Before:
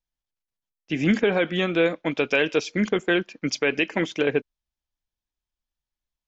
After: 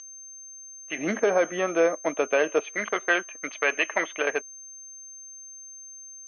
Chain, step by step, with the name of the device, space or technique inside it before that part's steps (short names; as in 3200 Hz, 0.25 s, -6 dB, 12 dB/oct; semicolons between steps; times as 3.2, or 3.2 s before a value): 0.98–2.64 tilt shelf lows +9 dB, about 820 Hz; toy sound module (decimation joined by straight lines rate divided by 4×; pulse-width modulation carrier 6300 Hz; speaker cabinet 620–4200 Hz, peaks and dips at 640 Hz +8 dB, 1200 Hz +9 dB, 1900 Hz +5 dB, 2900 Hz +5 dB)